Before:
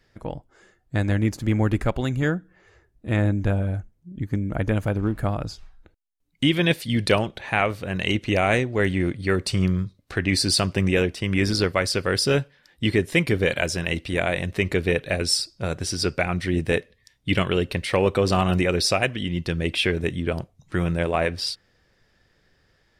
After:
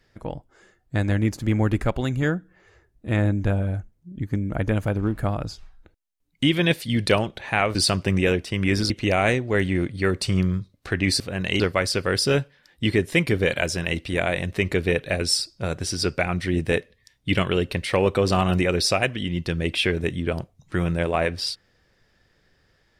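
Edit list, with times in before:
0:07.75–0:08.15: swap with 0:10.45–0:11.60

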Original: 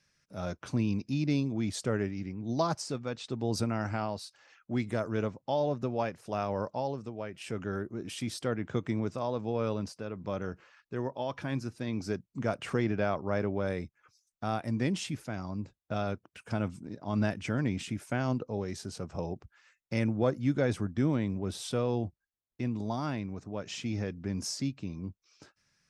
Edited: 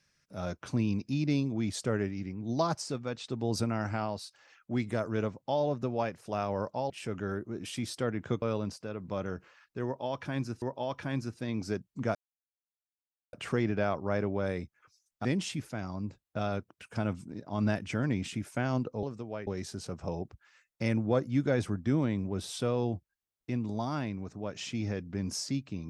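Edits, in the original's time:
0:06.90–0:07.34: move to 0:18.58
0:08.86–0:09.58: remove
0:11.01–0:11.78: repeat, 2 plays
0:12.54: splice in silence 1.18 s
0:14.46–0:14.80: remove

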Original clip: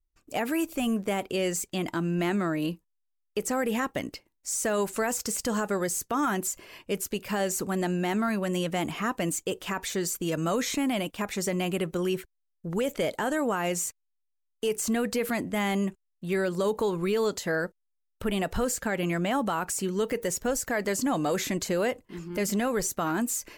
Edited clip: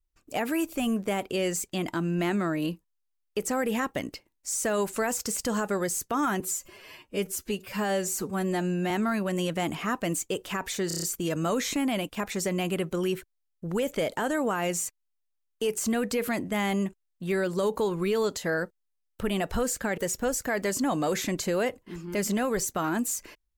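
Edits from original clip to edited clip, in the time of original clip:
0:06.40–0:08.07: time-stretch 1.5×
0:10.04: stutter 0.03 s, 6 plays
0:18.99–0:20.20: remove

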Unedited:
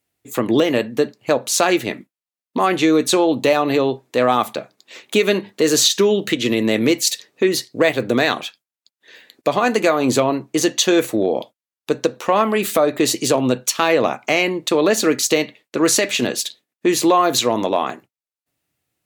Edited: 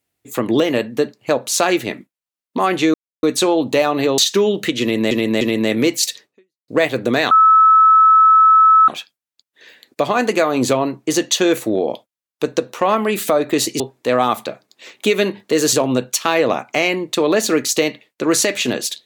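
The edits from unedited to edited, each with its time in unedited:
0:02.94: splice in silence 0.29 s
0:03.89–0:05.82: move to 0:13.27
0:06.45–0:06.75: repeat, 3 plays
0:07.28–0:07.72: fade out exponential
0:08.35: insert tone 1,300 Hz −6.5 dBFS 1.57 s

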